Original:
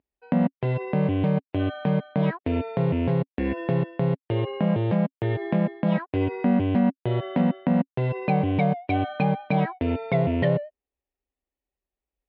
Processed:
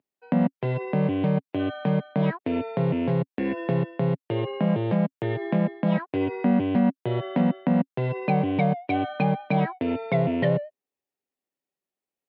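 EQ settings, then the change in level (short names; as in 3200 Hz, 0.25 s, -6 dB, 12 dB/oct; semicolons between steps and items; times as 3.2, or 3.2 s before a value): HPF 120 Hz 24 dB/oct; 0.0 dB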